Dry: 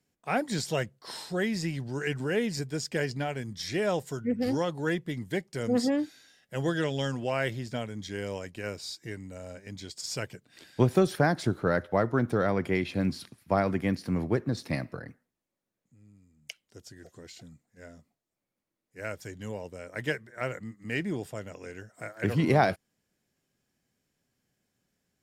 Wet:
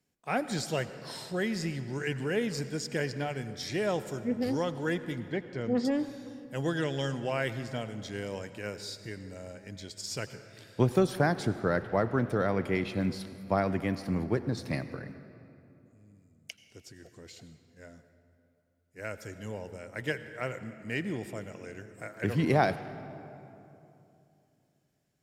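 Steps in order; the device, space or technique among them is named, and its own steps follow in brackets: 5.2–5.85 air absorption 170 m; saturated reverb return (on a send at -11 dB: reverb RT60 2.8 s, pre-delay 78 ms + soft clip -23 dBFS, distortion -14 dB); on the sum: gain -2 dB

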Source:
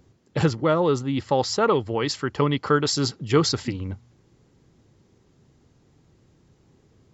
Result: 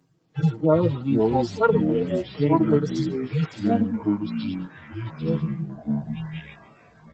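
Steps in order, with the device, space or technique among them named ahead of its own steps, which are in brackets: median-filter separation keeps harmonic; comb 6.4 ms, depth 95%; 1.31–3.43 low shelf 410 Hz -2.5 dB; echoes that change speed 0.216 s, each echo -6 st, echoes 3; video call (HPF 140 Hz 24 dB/oct; AGC gain up to 3.5 dB; gain -3 dB; Opus 20 kbps 48000 Hz)

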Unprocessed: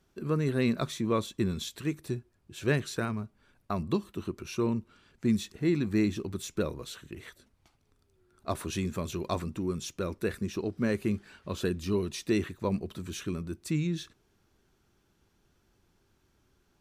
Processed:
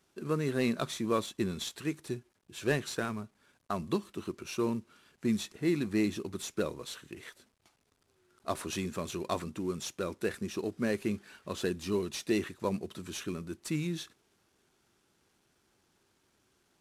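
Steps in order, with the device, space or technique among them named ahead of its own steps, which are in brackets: early wireless headset (HPF 230 Hz 6 dB/oct; CVSD 64 kbps)

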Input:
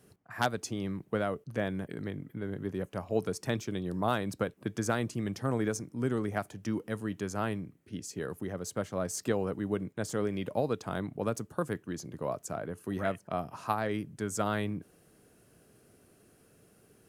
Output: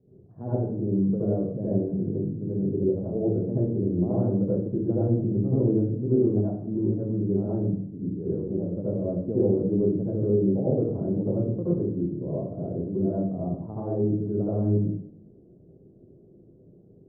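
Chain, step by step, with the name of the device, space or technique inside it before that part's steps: next room (LPF 480 Hz 24 dB/oct; reverb RT60 0.65 s, pre-delay 69 ms, DRR -9.5 dB)

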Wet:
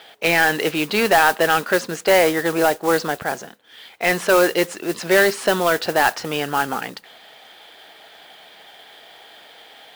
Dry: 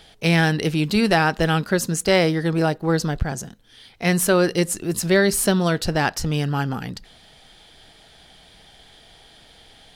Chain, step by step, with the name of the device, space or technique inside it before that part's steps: carbon microphone (BPF 480–3000 Hz; soft clip -15.5 dBFS, distortion -13 dB; modulation noise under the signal 14 dB); gain +8.5 dB

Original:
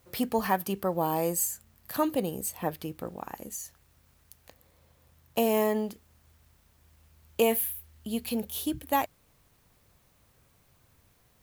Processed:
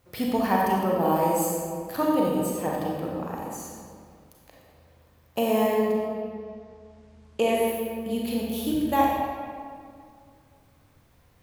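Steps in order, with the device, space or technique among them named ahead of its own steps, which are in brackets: 5.91–7.66 LPF 4400 Hz -> 11000 Hz 24 dB/oct; swimming-pool hall (reverb RT60 2.2 s, pre-delay 31 ms, DRR -3.5 dB; high shelf 4300 Hz -6 dB)

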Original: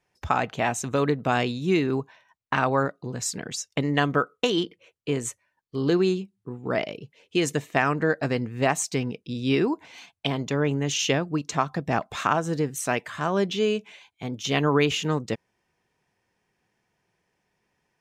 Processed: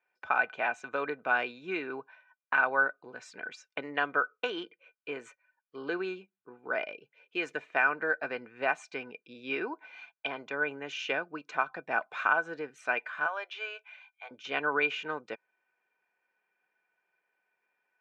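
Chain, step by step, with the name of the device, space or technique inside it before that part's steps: 13.26–14.31 inverse Chebyshev high-pass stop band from 180 Hz, stop band 60 dB; tin-can telephone (BPF 530–2400 Hz; small resonant body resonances 1500/2400 Hz, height 17 dB, ringing for 60 ms); gain -5.5 dB

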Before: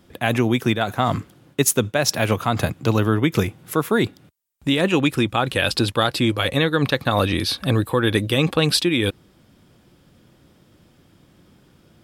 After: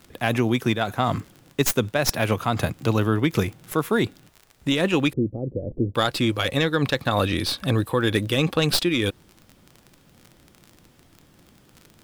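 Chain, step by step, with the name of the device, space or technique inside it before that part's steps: record under a worn stylus (tracing distortion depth 0.074 ms; crackle 37/s -30 dBFS; pink noise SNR 37 dB); 5.13–5.95 steep low-pass 520 Hz 36 dB/oct; gain -2.5 dB

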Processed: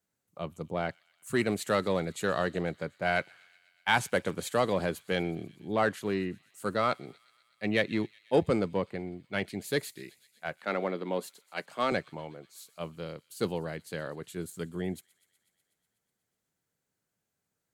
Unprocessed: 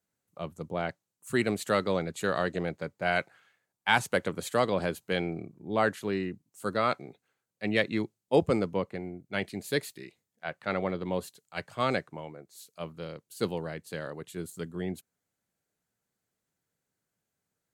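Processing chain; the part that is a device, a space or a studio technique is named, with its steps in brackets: 10.57–11.92 HPF 200 Hz 24 dB/oct; parallel distortion (in parallel at -7 dB: hard clip -24 dBFS, distortion -9 dB); on the sum: thin delay 0.123 s, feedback 75%, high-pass 2900 Hz, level -19.5 dB; gain -3 dB

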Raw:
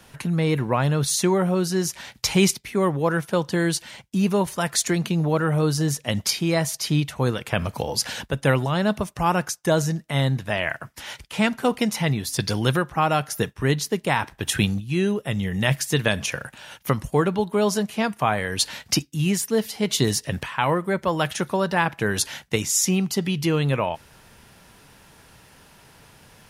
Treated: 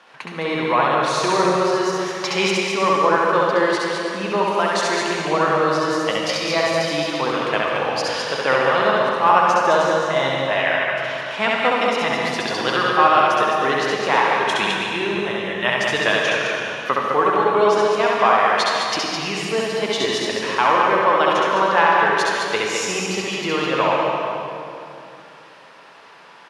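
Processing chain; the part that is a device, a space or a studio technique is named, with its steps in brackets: station announcement (BPF 470–3600 Hz; bell 1100 Hz +6 dB 0.39 oct; loudspeakers at several distances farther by 23 m -2 dB, 72 m -5 dB; reverb RT60 2.8 s, pre-delay 73 ms, DRR 0 dB); gain +2.5 dB

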